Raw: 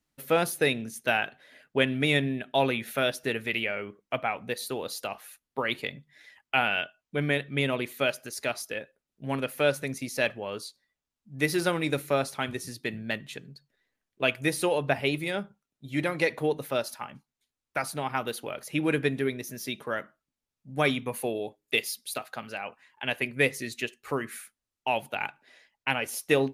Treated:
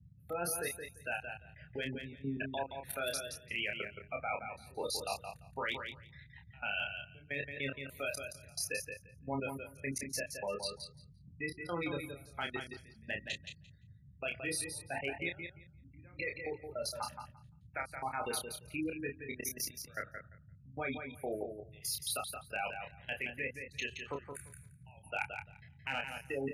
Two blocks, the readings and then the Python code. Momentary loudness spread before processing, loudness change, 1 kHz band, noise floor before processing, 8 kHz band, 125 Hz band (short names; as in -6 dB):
10 LU, -10.0 dB, -9.5 dB, under -85 dBFS, -3.0 dB, -12.5 dB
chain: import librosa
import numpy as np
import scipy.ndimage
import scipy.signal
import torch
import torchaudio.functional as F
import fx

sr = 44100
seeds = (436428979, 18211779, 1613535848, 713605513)

p1 = fx.notch(x, sr, hz=1100.0, q=13.0)
p2 = fx.spec_gate(p1, sr, threshold_db=-15, keep='strong')
p3 = fx.low_shelf(p2, sr, hz=460.0, db=-11.5)
p4 = fx.level_steps(p3, sr, step_db=21)
p5 = fx.step_gate(p4, sr, bpm=154, pattern='x..xxxx...xx.', floor_db=-24.0, edge_ms=4.5)
p6 = np.clip(p5, -10.0 ** (-30.5 / 20.0), 10.0 ** (-30.5 / 20.0))
p7 = fx.doubler(p6, sr, ms=29.0, db=-4.5)
p8 = fx.dmg_noise_band(p7, sr, seeds[0], low_hz=59.0, high_hz=160.0, level_db=-63.0)
p9 = p8 + fx.echo_feedback(p8, sr, ms=172, feedback_pct=15, wet_db=-7, dry=0)
y = p9 * librosa.db_to_amplitude(4.5)